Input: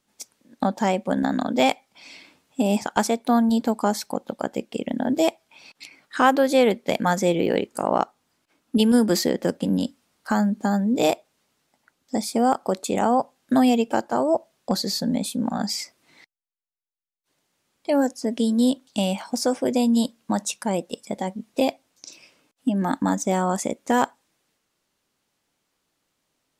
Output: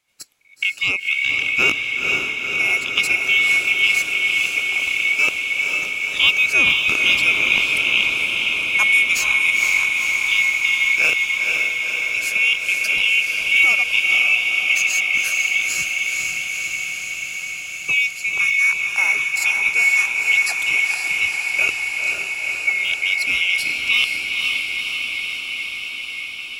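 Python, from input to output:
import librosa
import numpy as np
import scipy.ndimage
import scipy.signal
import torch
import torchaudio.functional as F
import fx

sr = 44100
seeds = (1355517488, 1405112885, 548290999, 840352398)

y = fx.band_swap(x, sr, width_hz=2000)
y = fx.echo_diffused(y, sr, ms=494, feedback_pct=78, wet_db=-3.0)
y = y * 10.0 ** (1.0 / 20.0)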